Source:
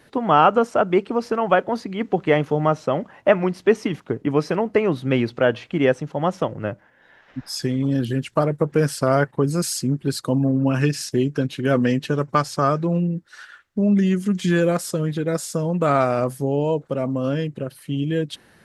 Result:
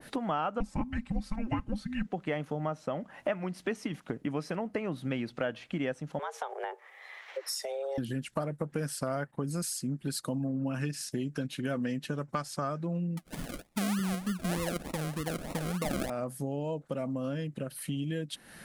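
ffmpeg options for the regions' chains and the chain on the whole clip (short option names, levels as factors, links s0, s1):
-filter_complex "[0:a]asettb=1/sr,asplit=3[s0][s1][s2];[s0]atrim=end=0.604[s3];[s1]atrim=start=0.6:end=2.07,asetpts=PTS-STARTPTS,afade=t=in:d=0.004:c=qsin,afade=t=out:st=1.466:d=0.004:c=qsin,aecho=1:1:4:0.72,atrim=end_sample=64827,afreqshift=-440[s4];[s2]atrim=start=2.066[s5];[s3][s4]acrossfade=d=0.004:c1=hsin:c2=qsin[s6];[s6][s5]acrossfade=d=0.004:c1=qsin:c2=hsin,asettb=1/sr,asplit=3[s7][s8][s9];[s7]atrim=end=6.194[s10];[s8]atrim=start=6.19:end=7.98,asetpts=PTS-STARTPTS,afade=t=in:d=0.004:c=qsin,afade=t=out:st=1.786:d=0.004:c=qsin,highpass=97,afreqshift=270,acompressor=threshold=0.0501:ratio=2.5:attack=3.2:release=140:knee=1:detection=peak[s11];[s9]atrim=start=7.976[s12];[s10][s11]acrossfade=d=0.004:c1=hsin:c2=qsin[s13];[s13][s12]acrossfade=d=0.004:c1=qsin:c2=hsin,asettb=1/sr,asplit=3[s14][s15][s16];[s14]atrim=end=13.174[s17];[s15]atrim=start=13.17:end=16.1,asetpts=PTS-STARTPTS,afade=t=in:d=0.004:c=qsin,afade=t=out:st=2.926:d=0.004:c=qsin,asuperstop=centerf=2800:order=12:qfactor=1.9,equalizer=f=2600:t=o:w=2.1:g=7.5,acrusher=samples=39:mix=1:aa=0.000001:lfo=1:lforange=23.4:lforate=3.3[s18];[s16]atrim=start=16.096[s19];[s17][s18]acrossfade=d=0.004:c1=hsin:c2=qsin[s20];[s20][s19]acrossfade=d=0.004:c1=qsin:c2=hsin,equalizer=f=100:t=o:w=0.67:g=-10,equalizer=f=400:t=o:w=0.67:g=-8,equalizer=f=1000:t=o:w=0.67:g=-4,equalizer=f=10000:t=o:w=0.67:g=7,acompressor=threshold=0.00891:ratio=3,adynamicequalizer=threshold=0.00251:dfrequency=1600:dqfactor=0.7:tfrequency=1600:tqfactor=0.7:attack=5:release=100:ratio=0.375:range=3:mode=cutabove:tftype=highshelf,volume=1.88"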